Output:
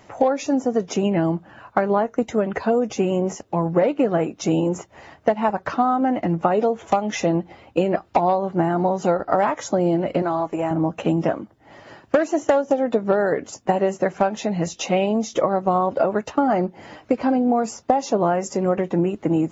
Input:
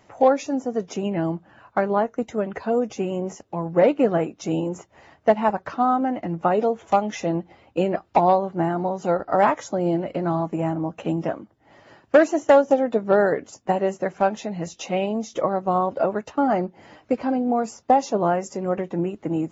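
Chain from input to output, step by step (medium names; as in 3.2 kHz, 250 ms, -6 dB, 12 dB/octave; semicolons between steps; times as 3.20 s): compression 10:1, threshold -21 dBFS, peak gain reduction 12 dB; 10.22–10.71 s: peaking EQ 190 Hz -14.5 dB 1 oct; trim +6.5 dB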